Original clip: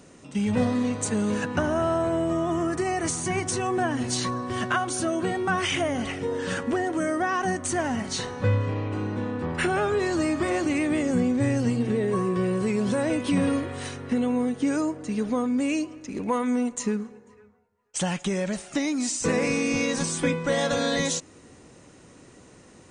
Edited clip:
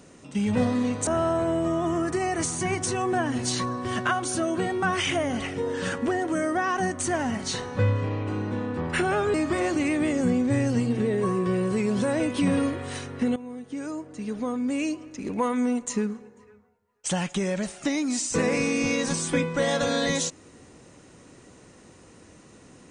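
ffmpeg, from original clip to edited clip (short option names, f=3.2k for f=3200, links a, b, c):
-filter_complex "[0:a]asplit=4[a][b][c][d];[a]atrim=end=1.072[e];[b]atrim=start=1.718:end=9.992[f];[c]atrim=start=10.238:end=14.26,asetpts=PTS-STARTPTS,afade=t=out:st=4.018:d=0.004:c=hsin:silence=0.158489[g];[d]atrim=start=14.26,asetpts=PTS-STARTPTS,afade=t=in:d=1.84:silence=0.158489[h];[e][f]acrossfade=d=0.004:c1=hsin:c2=hsin[i];[g][h]concat=n=2:v=0:a=1[j];[i][j]acrossfade=d=0.004:c1=hsin:c2=hsin"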